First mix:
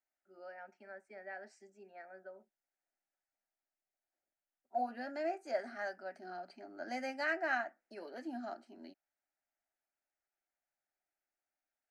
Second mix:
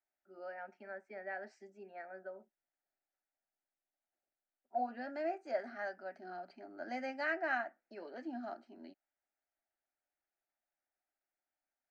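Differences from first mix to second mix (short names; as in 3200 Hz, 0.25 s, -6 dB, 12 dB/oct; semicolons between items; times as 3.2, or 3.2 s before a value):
first voice +4.5 dB; master: add air absorption 130 m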